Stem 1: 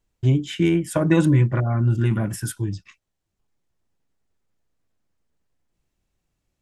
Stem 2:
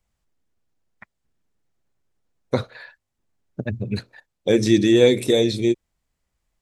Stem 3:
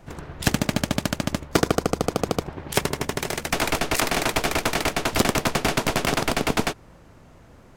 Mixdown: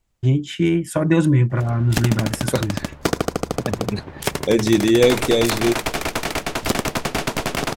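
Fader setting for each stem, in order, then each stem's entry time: +1.0, 0.0, -0.5 dB; 0.00, 0.00, 1.50 s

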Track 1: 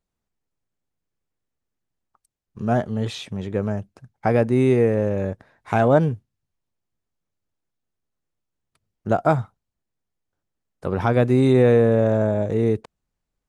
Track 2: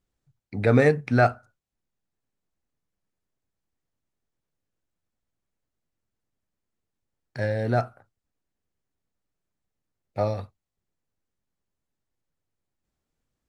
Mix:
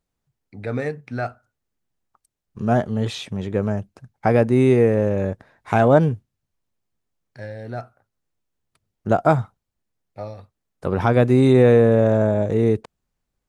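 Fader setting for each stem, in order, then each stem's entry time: +2.0, -7.5 dB; 0.00, 0.00 s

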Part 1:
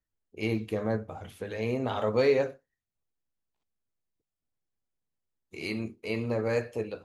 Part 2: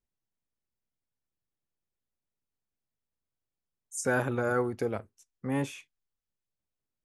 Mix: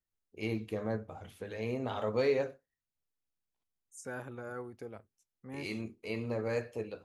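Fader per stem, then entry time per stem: -5.5, -14.0 dB; 0.00, 0.00 s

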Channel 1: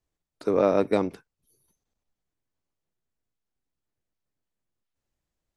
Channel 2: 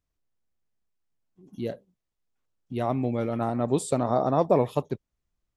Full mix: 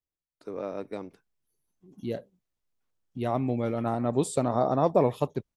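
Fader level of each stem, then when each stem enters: -13.5, -1.0 dB; 0.00, 0.45 s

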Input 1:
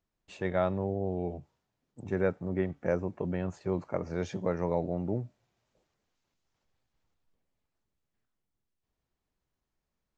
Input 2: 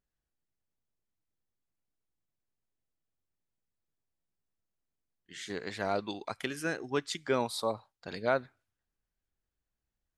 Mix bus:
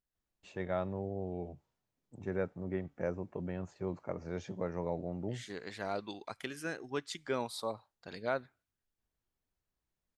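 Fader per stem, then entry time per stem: -6.5, -5.5 dB; 0.15, 0.00 s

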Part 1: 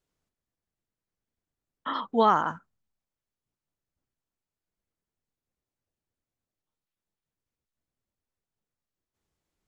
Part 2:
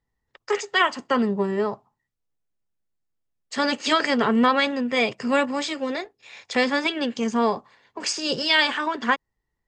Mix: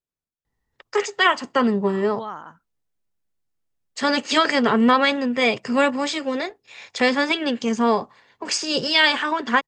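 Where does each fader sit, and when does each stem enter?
-12.0, +2.5 dB; 0.00, 0.45 s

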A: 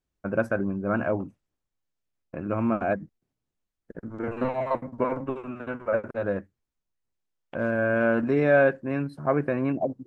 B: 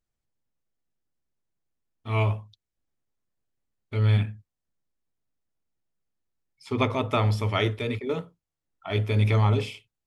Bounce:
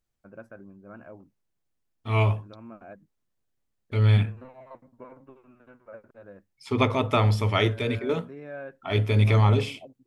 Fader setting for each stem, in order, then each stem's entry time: -19.5, +2.0 dB; 0.00, 0.00 s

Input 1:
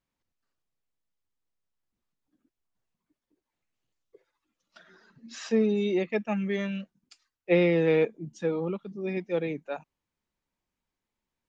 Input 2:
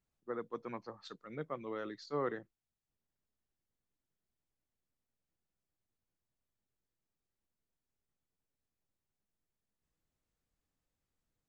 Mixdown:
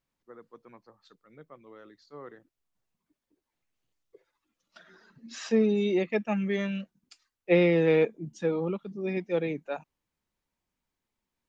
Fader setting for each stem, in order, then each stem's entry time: +0.5, -9.0 dB; 0.00, 0.00 s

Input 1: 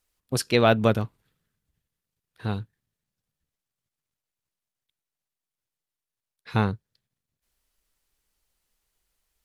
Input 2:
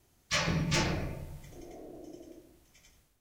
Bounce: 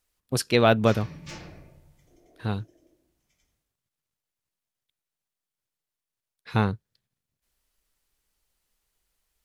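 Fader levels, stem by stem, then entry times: 0.0, -12.0 dB; 0.00, 0.55 s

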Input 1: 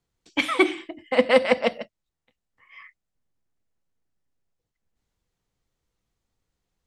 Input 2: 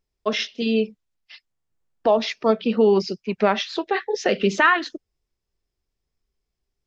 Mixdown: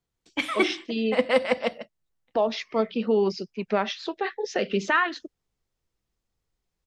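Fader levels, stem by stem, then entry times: -4.0, -5.5 dB; 0.00, 0.30 s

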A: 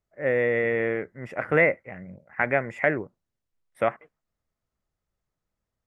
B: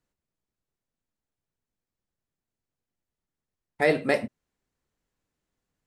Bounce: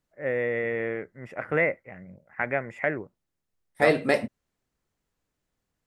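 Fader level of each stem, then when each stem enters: -4.0, +1.0 dB; 0.00, 0.00 s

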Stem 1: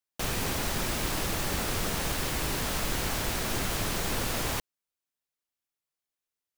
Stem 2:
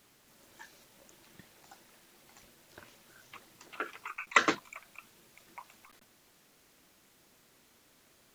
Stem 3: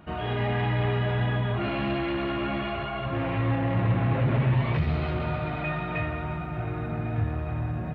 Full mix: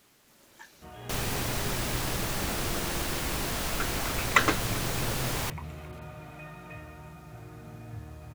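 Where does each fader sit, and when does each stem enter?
-1.0, +2.0, -14.5 dB; 0.90, 0.00, 0.75 s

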